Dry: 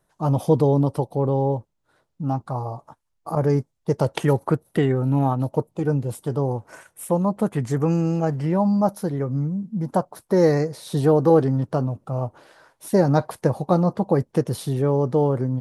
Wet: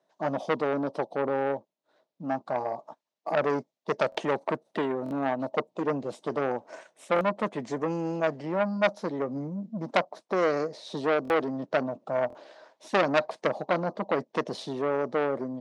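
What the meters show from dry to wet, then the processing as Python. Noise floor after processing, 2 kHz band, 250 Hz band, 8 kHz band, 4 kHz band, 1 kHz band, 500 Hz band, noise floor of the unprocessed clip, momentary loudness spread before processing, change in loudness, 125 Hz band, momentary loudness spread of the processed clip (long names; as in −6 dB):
−82 dBFS, +5.5 dB, −10.0 dB, below −10 dB, +1.0 dB, −3.0 dB, −5.5 dB, −73 dBFS, 9 LU, −7.0 dB, −19.0 dB, 8 LU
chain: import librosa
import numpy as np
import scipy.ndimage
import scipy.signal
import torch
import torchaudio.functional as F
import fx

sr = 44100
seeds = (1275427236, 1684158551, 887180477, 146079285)

y = fx.rider(x, sr, range_db=3, speed_s=0.5)
y = fx.cabinet(y, sr, low_hz=210.0, low_slope=24, high_hz=6400.0, hz=(630.0, 1400.0, 3800.0), db=(9, -5, 3))
y = fx.buffer_glitch(y, sr, at_s=(4.1, 5.04, 7.14, 11.23, 12.28), block=1024, repeats=2)
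y = fx.transformer_sat(y, sr, knee_hz=2000.0)
y = F.gain(torch.from_numpy(y), -4.5).numpy()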